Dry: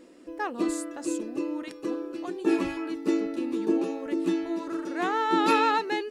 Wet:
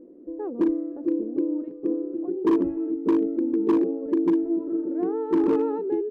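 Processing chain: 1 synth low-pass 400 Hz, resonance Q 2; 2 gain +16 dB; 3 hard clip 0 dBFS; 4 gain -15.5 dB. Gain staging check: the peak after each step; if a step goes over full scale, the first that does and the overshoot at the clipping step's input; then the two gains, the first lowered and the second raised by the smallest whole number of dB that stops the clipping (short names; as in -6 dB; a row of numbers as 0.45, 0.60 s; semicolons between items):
-8.0, +8.0, 0.0, -15.5 dBFS; step 2, 8.0 dB; step 2 +8 dB, step 4 -7.5 dB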